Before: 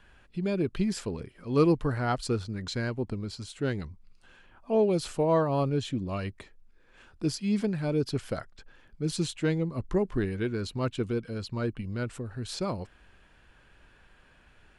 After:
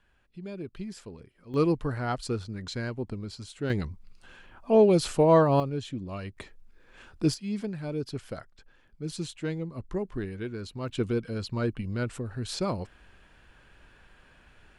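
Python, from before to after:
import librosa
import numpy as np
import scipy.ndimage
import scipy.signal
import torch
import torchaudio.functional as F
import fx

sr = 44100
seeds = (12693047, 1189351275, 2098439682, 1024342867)

y = fx.gain(x, sr, db=fx.steps((0.0, -10.0), (1.54, -2.0), (3.7, 5.0), (5.6, -4.0), (6.37, 4.0), (7.34, -5.0), (10.89, 2.0)))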